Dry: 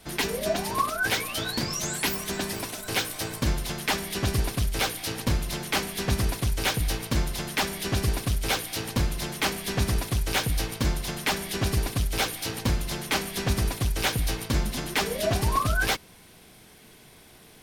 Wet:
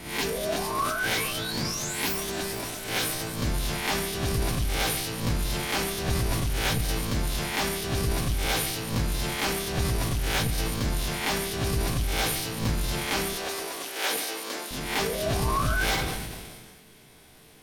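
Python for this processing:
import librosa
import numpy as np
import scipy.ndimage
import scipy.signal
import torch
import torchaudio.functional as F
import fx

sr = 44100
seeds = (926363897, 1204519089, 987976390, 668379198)

y = fx.spec_swells(x, sr, rise_s=0.48)
y = fx.highpass(y, sr, hz=350.0, slope=24, at=(13.34, 14.71))
y = fx.transient(y, sr, attack_db=-2, sustain_db=5)
y = fx.room_shoebox(y, sr, seeds[0], volume_m3=190.0, walls='mixed', distance_m=0.32)
y = fx.sustainer(y, sr, db_per_s=32.0)
y = y * 10.0 ** (-4.0 / 20.0)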